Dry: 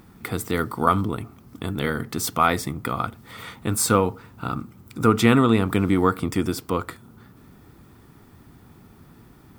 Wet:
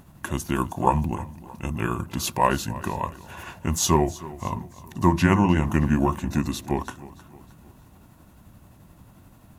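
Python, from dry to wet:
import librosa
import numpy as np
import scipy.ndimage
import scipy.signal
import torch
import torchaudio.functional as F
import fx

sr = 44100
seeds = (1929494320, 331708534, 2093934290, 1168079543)

y = fx.pitch_heads(x, sr, semitones=-4.5)
y = fx.echo_feedback(y, sr, ms=312, feedback_pct=46, wet_db=-18)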